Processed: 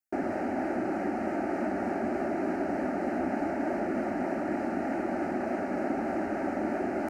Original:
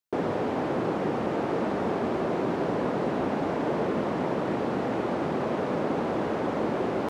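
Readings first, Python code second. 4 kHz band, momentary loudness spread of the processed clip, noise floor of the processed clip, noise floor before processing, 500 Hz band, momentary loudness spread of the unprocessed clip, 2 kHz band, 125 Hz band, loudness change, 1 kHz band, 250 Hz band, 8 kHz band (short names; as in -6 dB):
under -10 dB, 1 LU, -33 dBFS, -30 dBFS, -4.5 dB, 1 LU, -1.0 dB, -9.5 dB, -3.0 dB, -3.0 dB, -1.5 dB, n/a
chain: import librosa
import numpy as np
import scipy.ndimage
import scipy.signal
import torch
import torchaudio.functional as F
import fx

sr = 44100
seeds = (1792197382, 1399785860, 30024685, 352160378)

y = fx.vibrato(x, sr, rate_hz=3.3, depth_cents=65.0)
y = fx.fixed_phaser(y, sr, hz=700.0, stages=8)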